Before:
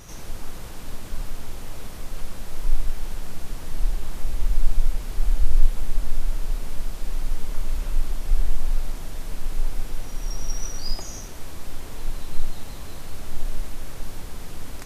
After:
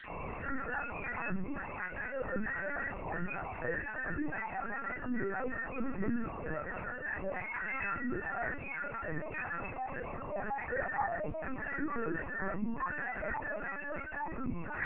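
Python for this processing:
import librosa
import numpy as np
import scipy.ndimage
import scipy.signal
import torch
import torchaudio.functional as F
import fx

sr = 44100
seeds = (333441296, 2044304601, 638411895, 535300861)

p1 = fx.spec_dropout(x, sr, seeds[0], share_pct=39)
p2 = fx.brickwall_bandpass(p1, sr, low_hz=170.0, high_hz=2800.0)
p3 = fx.doubler(p2, sr, ms=17.0, db=-12.5)
p4 = p3 + fx.echo_tape(p3, sr, ms=300, feedback_pct=33, wet_db=-11.0, lp_hz=2000.0, drive_db=28.0, wow_cents=13, dry=0)
p5 = fx.room_shoebox(p4, sr, seeds[1], volume_m3=240.0, walls='furnished', distance_m=5.7)
p6 = fx.noise_reduce_blind(p5, sr, reduce_db=19)
p7 = fx.lpc_vocoder(p6, sr, seeds[2], excitation='pitch_kept', order=8)
p8 = fx.env_flatten(p7, sr, amount_pct=50)
y = p8 * 10.0 ** (2.5 / 20.0)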